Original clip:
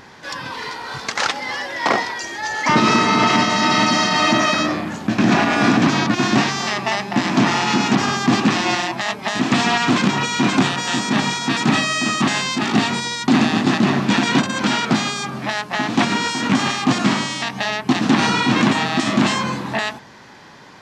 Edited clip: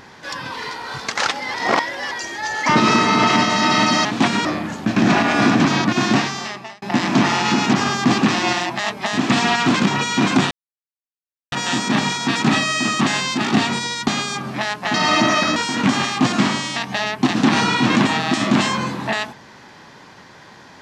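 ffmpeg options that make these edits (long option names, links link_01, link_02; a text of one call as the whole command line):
ffmpeg -i in.wav -filter_complex "[0:a]asplit=10[link_01][link_02][link_03][link_04][link_05][link_06][link_07][link_08][link_09][link_10];[link_01]atrim=end=1.542[link_11];[link_02]atrim=start=1.538:end=2.112,asetpts=PTS-STARTPTS,areverse[link_12];[link_03]atrim=start=2.108:end=4.052[link_13];[link_04]atrim=start=15.818:end=16.222[link_14];[link_05]atrim=start=4.668:end=7.04,asetpts=PTS-STARTPTS,afade=type=out:start_time=1.652:duration=0.72[link_15];[link_06]atrim=start=7.04:end=10.73,asetpts=PTS-STARTPTS,afade=type=in:duration=0.004:curve=hsin,afade=type=out:start_time=3.686:duration=0.004:curve=hsin,apad=pad_dur=1.01[link_16];[link_07]atrim=start=10.73:end=13.292,asetpts=PTS-STARTPTS,afade=type=in:duration=0.004:curve=hsin[link_17];[link_08]atrim=start=14.958:end=15.822[link_18];[link_09]atrim=start=4.048:end=4.672[link_19];[link_10]atrim=start=16.218[link_20];[link_11][link_12]acrossfade=duration=0.004:curve1=hsin:curve2=hsin[link_21];[link_21][link_13]acrossfade=duration=0.004:curve1=hsin:curve2=hsin[link_22];[link_22][link_14]acrossfade=duration=0.004:curve1=hsin:curve2=hsin[link_23];[link_15][link_16][link_17]concat=n=3:v=0:a=1[link_24];[link_23][link_24]acrossfade=duration=0.004:curve1=hsin:curve2=hsin[link_25];[link_25][link_18]acrossfade=duration=0.004:curve1=hsin:curve2=hsin[link_26];[link_26][link_19]acrossfade=duration=0.004:curve1=hsin:curve2=hsin[link_27];[link_27][link_20]acrossfade=duration=0.004:curve1=hsin:curve2=hsin" out.wav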